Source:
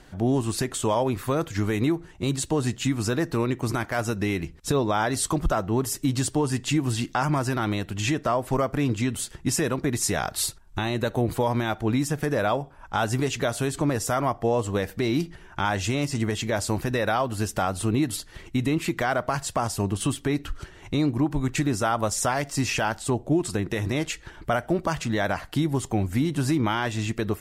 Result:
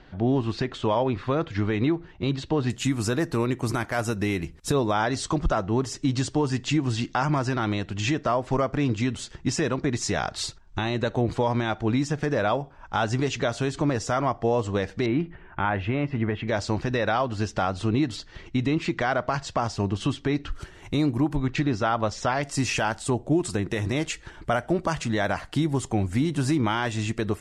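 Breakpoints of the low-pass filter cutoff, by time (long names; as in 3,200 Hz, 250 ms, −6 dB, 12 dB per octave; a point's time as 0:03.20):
low-pass filter 24 dB per octave
4,400 Hz
from 0:02.70 12,000 Hz
from 0:04.93 6,600 Hz
from 0:15.06 2,600 Hz
from 0:16.48 5,900 Hz
from 0:20.52 12,000 Hz
from 0:21.36 5,000 Hz
from 0:22.43 9,800 Hz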